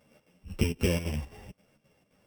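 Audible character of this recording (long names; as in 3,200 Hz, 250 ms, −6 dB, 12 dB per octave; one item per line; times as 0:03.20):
a buzz of ramps at a fixed pitch in blocks of 16 samples
chopped level 3.8 Hz, depth 65%, duty 70%
a shimmering, thickened sound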